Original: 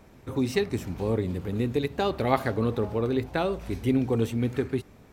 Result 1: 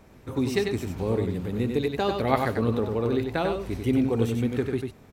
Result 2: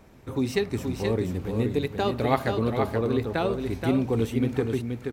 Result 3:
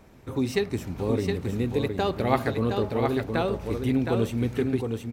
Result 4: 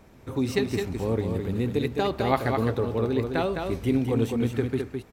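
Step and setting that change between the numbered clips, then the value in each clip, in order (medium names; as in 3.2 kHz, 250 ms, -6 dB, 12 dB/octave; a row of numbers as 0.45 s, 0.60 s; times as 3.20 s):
delay, time: 95 ms, 477 ms, 716 ms, 210 ms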